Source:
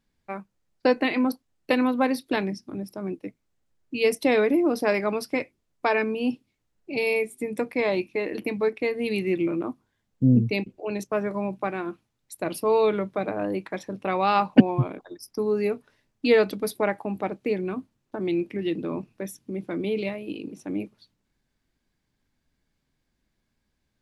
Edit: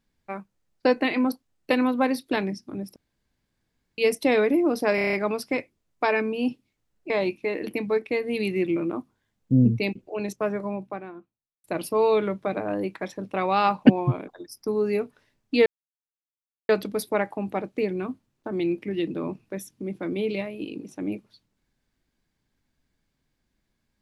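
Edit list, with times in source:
2.96–3.98 room tone
4.95 stutter 0.03 s, 7 plays
6.92–7.81 cut
11.03–12.35 studio fade out
16.37 insert silence 1.03 s

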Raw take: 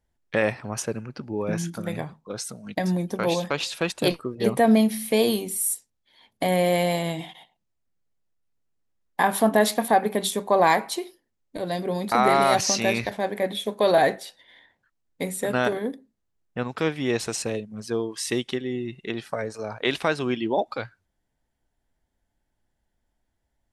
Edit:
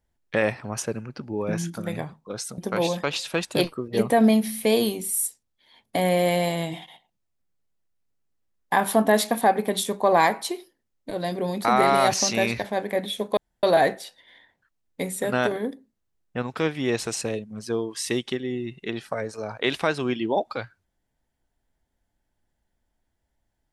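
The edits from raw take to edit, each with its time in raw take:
2.58–3.05 cut
13.84 insert room tone 0.26 s

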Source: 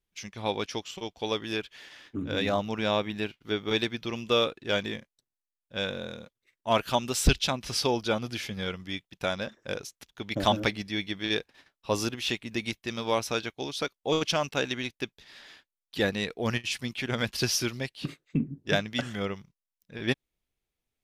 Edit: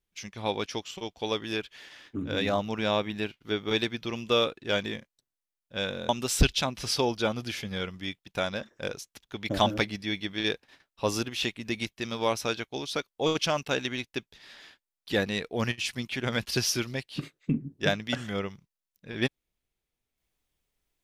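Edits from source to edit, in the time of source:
6.09–6.95 cut

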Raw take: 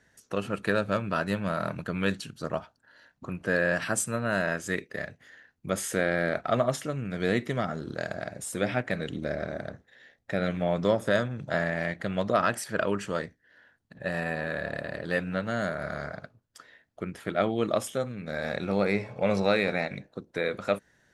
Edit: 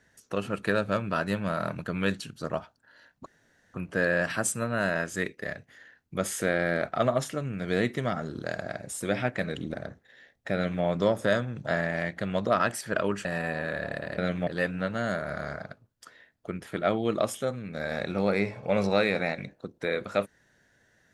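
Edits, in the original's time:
3.26 insert room tone 0.48 s
9.26–9.57 cut
10.37–10.66 copy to 15
13.08–14.07 cut

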